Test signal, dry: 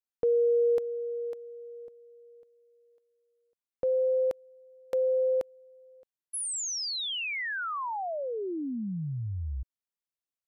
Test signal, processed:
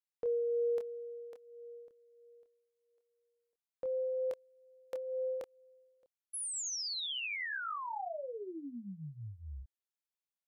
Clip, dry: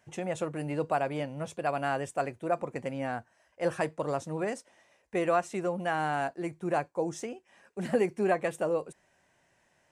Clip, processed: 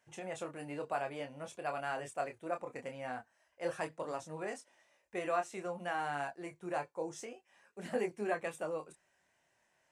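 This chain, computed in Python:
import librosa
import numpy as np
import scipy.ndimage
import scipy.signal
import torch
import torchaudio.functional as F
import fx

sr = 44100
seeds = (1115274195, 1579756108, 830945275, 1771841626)

y = fx.low_shelf(x, sr, hz=400.0, db=-8.5)
y = fx.chorus_voices(y, sr, voices=2, hz=0.25, base_ms=26, depth_ms=2.4, mix_pct=35)
y = F.gain(torch.from_numpy(y), -2.5).numpy()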